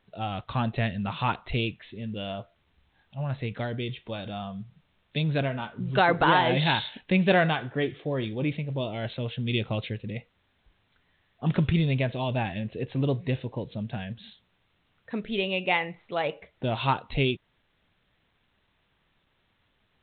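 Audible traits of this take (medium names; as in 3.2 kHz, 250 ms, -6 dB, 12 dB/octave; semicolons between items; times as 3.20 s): a quantiser's noise floor 12-bit, dither triangular; A-law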